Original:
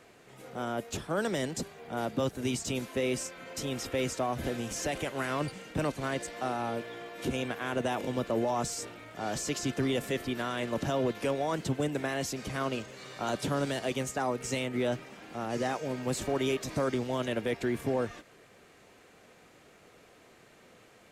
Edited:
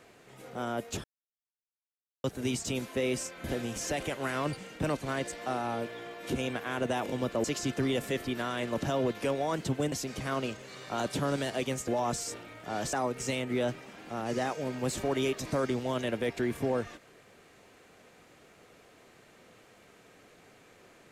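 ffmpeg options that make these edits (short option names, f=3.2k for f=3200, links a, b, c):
-filter_complex "[0:a]asplit=8[a][b][c][d][e][f][g][h];[a]atrim=end=1.04,asetpts=PTS-STARTPTS,afade=t=out:st=1.036:d=0.004:c=hsin[i];[b]atrim=start=1.04:end=2.24,asetpts=PTS-STARTPTS,volume=0[j];[c]atrim=start=2.24:end=3.442,asetpts=PTS-STARTPTS,afade=t=in:d=0.004:c=hsin[k];[d]atrim=start=4.388:end=8.392[l];[e]atrim=start=9.438:end=11.922[m];[f]atrim=start=12.208:end=14.172[n];[g]atrim=start=8.388:end=9.442[o];[h]atrim=start=14.168[p];[i][j][k]concat=n=3:v=0:a=1[q];[q][l]acrossfade=d=0.004:c1=hsin:c2=hsin[r];[r][m]acrossfade=d=0.004:c1=hsin:c2=hsin[s];[s][n]acrossfade=d=0.004:c1=hsin:c2=hsin[t];[t][o]acrossfade=d=0.004:c1=hsin:c2=hsin[u];[u][p]acrossfade=d=0.004:c1=hsin:c2=hsin"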